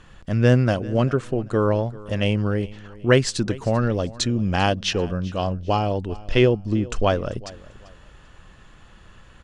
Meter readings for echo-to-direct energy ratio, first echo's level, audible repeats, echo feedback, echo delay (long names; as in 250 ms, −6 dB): −19.5 dB, −20.0 dB, 2, 27%, 392 ms